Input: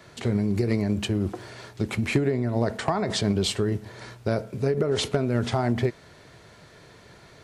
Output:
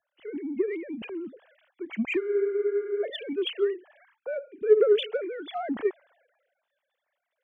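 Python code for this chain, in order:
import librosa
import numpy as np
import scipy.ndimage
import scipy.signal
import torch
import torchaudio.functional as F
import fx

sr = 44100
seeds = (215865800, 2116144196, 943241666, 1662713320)

p1 = fx.sine_speech(x, sr)
p2 = 10.0 ** (-25.0 / 20.0) * np.tanh(p1 / 10.0 ** (-25.0 / 20.0))
p3 = p1 + (p2 * 10.0 ** (-12.0 / 20.0))
p4 = fx.spec_freeze(p3, sr, seeds[0], at_s=2.22, hold_s=0.8)
p5 = fx.band_widen(p4, sr, depth_pct=70)
y = p5 * 10.0 ** (-5.5 / 20.0)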